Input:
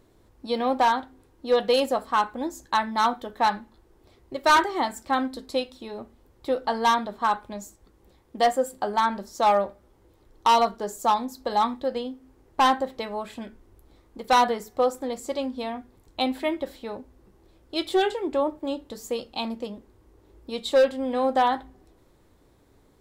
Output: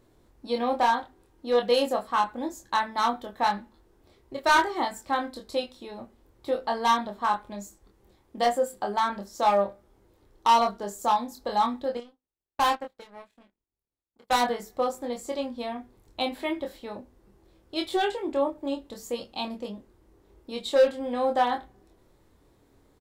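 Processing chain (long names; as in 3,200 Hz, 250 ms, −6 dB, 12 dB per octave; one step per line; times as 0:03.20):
0:11.97–0:14.41: power curve on the samples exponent 2
double-tracking delay 25 ms −4 dB
level −3.5 dB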